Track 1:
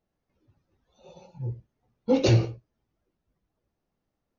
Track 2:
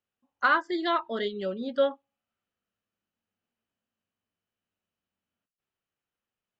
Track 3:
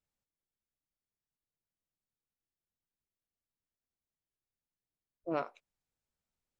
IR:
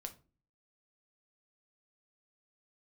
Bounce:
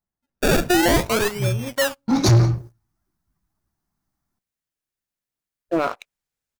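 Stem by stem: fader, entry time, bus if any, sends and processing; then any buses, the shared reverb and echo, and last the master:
−1.5 dB, 0.00 s, no bus, send −8 dB, phaser with its sweep stopped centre 1,200 Hz, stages 4; automatic ducking −18 dB, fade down 0.50 s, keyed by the second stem
0:00.90 −7 dB → 0:01.54 −20 dB, 0.00 s, bus A, send −5.5 dB, sample-and-hold swept by an LFO 29×, swing 100% 0.48 Hz
−2.5 dB, 0.45 s, bus A, no send, no processing
bus A: 0.0 dB, parametric band 1,700 Hz +4.5 dB 1.2 octaves; brickwall limiter −29.5 dBFS, peak gain reduction 11.5 dB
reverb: on, RT60 0.35 s, pre-delay 6 ms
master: high-shelf EQ 3,500 Hz +6 dB; automatic gain control gain up to 9 dB; leveller curve on the samples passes 3

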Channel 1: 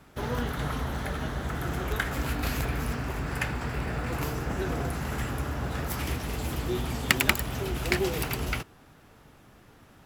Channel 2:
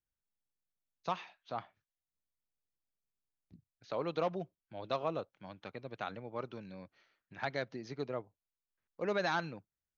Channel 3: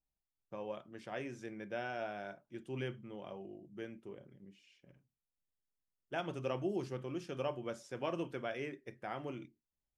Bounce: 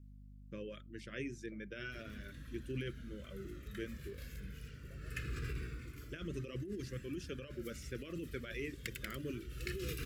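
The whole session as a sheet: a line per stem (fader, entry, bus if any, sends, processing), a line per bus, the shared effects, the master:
+1.0 dB, 1.75 s, no send, flanger whose copies keep moving one way falling 0.22 Hz; automatic ducking −19 dB, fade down 0.70 s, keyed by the third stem
−7.0 dB, 0.00 s, no send, downward compressor, threshold −42 dBFS, peak gain reduction 13.5 dB; band-pass on a step sequencer 5.3 Hz 560–1,800 Hz
+2.0 dB, 0.00 s, no send, reverb reduction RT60 1.4 s; mains hum 50 Hz, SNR 14 dB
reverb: not used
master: compressor whose output falls as the input rises −39 dBFS, ratio −1; Butterworth band-reject 820 Hz, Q 0.76

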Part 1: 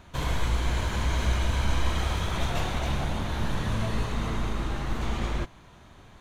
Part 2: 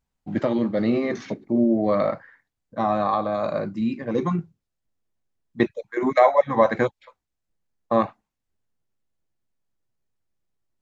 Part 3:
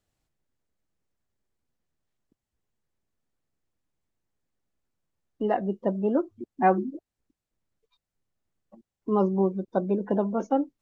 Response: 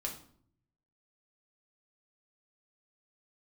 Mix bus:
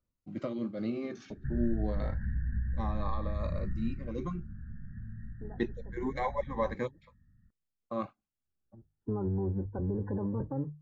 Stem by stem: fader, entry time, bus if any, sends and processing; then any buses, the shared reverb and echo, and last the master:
0:03.79 −1 dB → 0:04.20 −10.5 dB, 1.30 s, bus A, no send, inverse Chebyshev band-stop filter 450–930 Hz, stop band 60 dB; downward compressor 4 to 1, threshold −28 dBFS, peak gain reduction 8 dB
−10.0 dB, 0.00 s, no bus, no send, shaped tremolo triangle 5 Hz, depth 40%
−3.5 dB, 0.00 s, bus A, no send, sub-octave generator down 1 octave, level +3 dB; mains-hum notches 50/100/150 Hz; automatic ducking −22 dB, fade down 0.40 s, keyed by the second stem
bus A: 0.0 dB, linear-phase brick-wall low-pass 1,900 Hz; brickwall limiter −24.5 dBFS, peak gain reduction 11 dB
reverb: not used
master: parametric band 680 Hz −6.5 dB 0.24 octaves; phaser whose notches keep moving one way rising 0.27 Hz

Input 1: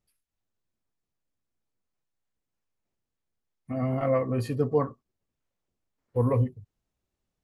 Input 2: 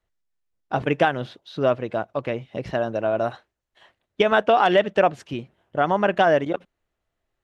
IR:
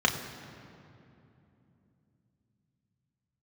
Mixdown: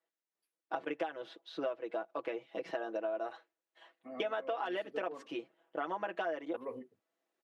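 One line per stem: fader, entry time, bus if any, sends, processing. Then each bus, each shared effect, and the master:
0.0 dB, 0.35 s, no send, automatic ducking −12 dB, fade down 0.70 s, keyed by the second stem
−7.5 dB, 0.00 s, no send, comb filter 6.1 ms, depth 89%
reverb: not used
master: high-pass filter 290 Hz 24 dB per octave; high-shelf EQ 4,000 Hz −6 dB; downward compressor 6 to 1, threshold −34 dBFS, peak gain reduction 15.5 dB

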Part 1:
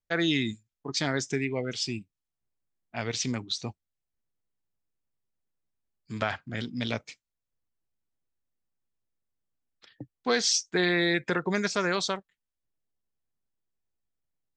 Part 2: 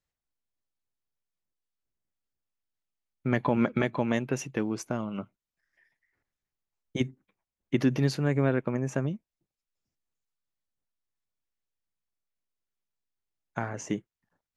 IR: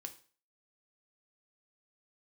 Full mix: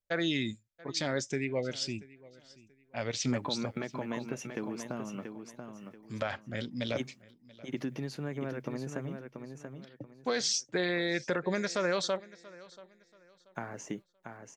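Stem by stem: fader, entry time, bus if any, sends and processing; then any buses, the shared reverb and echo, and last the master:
−4.0 dB, 0.00 s, no send, echo send −22 dB, parametric band 560 Hz +11.5 dB 0.22 octaves
−5.0 dB, 0.00 s, no send, echo send −7 dB, downward compressor, threshold −26 dBFS, peak gain reduction 8 dB; high-pass filter 140 Hz; bit reduction 12 bits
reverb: not used
echo: repeating echo 683 ms, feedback 28%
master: brickwall limiter −19.5 dBFS, peak gain reduction 6.5 dB

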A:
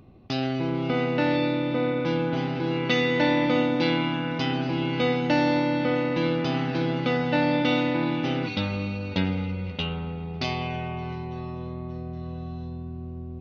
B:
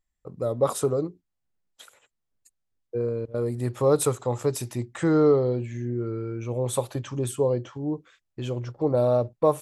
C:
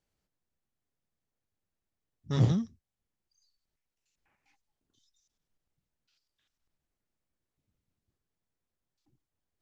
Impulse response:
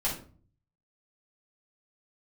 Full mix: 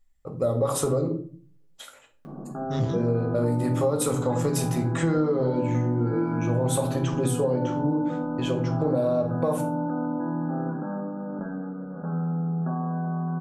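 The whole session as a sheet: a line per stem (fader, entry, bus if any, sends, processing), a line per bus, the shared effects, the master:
−13.0 dB, 2.25 s, send −7 dB, brick-wall band-pass 130–1,700 Hz; envelope flattener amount 70%
+1.0 dB, 0.00 s, send −5.5 dB, brickwall limiter −17 dBFS, peak gain reduction 8.5 dB
−0.5 dB, 0.40 s, no send, no processing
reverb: on, RT60 0.40 s, pre-delay 4 ms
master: downward compressor 6 to 1, threshold −20 dBFS, peak gain reduction 9 dB

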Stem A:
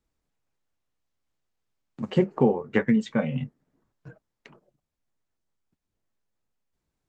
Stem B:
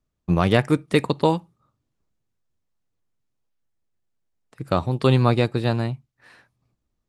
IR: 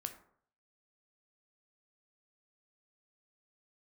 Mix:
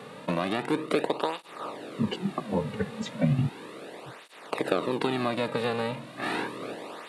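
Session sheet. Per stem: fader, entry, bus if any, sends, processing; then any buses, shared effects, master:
−5.0 dB, 0.00 s, no send, parametric band 100 Hz +10.5 dB 2.9 octaves; compressor whose output falls as the input rises −23 dBFS, ratio −0.5; multiband upward and downward expander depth 40%
+1.0 dB, 0.00 s, no send, compressor on every frequency bin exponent 0.4; high-pass filter 250 Hz 12 dB per octave; downward compressor 3 to 1, threshold −24 dBFS, peak gain reduction 11 dB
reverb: not used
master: speech leveller within 4 dB 2 s; through-zero flanger with one copy inverted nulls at 0.35 Hz, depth 3.2 ms

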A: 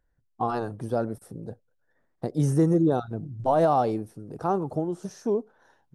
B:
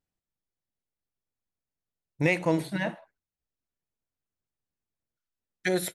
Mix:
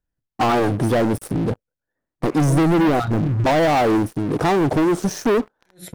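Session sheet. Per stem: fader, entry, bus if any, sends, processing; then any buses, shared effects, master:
0.0 dB, 0.00 s, no send, downward compressor 6 to 1, threshold −23 dBFS, peak gain reduction 7 dB; parametric band 300 Hz +6 dB 0.44 octaves; leveller curve on the samples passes 5
−4.5 dB, 0.00 s, no send, low-shelf EQ 170 Hz +10 dB; level that may rise only so fast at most 230 dB per second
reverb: not used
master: no processing

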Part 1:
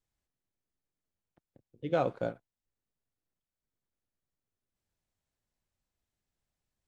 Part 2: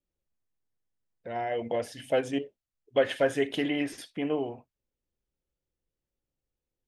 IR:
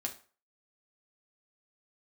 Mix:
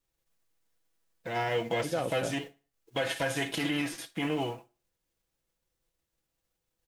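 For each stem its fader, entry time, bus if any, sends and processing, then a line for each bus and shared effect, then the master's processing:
−1.0 dB, 0.00 s, no send, no processing
−2.0 dB, 0.00 s, send −7.5 dB, spectral envelope flattened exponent 0.6; comb filter 6.1 ms, depth 67%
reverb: on, RT60 0.40 s, pre-delay 4 ms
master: brickwall limiter −20.5 dBFS, peak gain reduction 11 dB

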